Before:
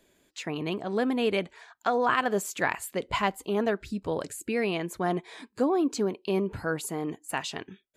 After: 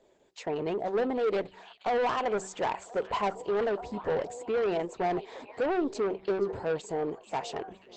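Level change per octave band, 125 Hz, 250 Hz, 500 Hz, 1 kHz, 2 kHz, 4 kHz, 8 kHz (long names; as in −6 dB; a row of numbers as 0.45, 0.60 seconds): −7.0, −5.5, +0.5, −1.0, −7.0, −6.5, −9.0 decibels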